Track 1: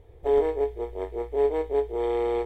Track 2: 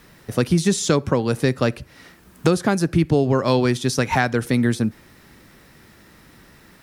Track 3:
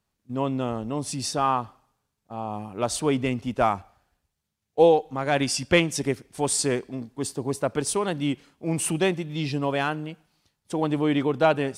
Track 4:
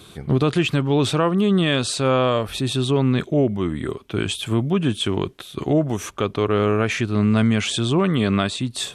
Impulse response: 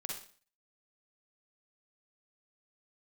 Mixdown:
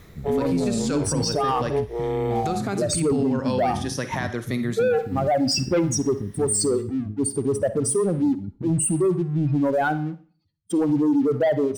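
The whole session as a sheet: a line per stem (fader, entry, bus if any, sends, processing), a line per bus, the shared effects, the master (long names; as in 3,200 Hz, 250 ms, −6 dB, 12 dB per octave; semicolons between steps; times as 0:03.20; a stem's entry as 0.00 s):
0.0 dB, 0.00 s, no send, no processing
−3.5 dB, 0.00 s, send −11 dB, rippled gain that drifts along the octave scale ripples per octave 1.2, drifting +0.44 Hz, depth 7 dB; automatic ducking −7 dB, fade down 0.30 s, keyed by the fourth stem
−2.0 dB, 0.00 s, send −9 dB, expanding power law on the bin magnitudes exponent 3.2; leveller curve on the samples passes 2
−5.5 dB, 0.00 s, no send, inverse Chebyshev low-pass filter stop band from 1,500 Hz, stop band 80 dB; compressor whose output falls as the input rises −27 dBFS, ratio −0.5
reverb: on, RT60 0.45 s, pre-delay 41 ms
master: brickwall limiter −15 dBFS, peak gain reduction 9 dB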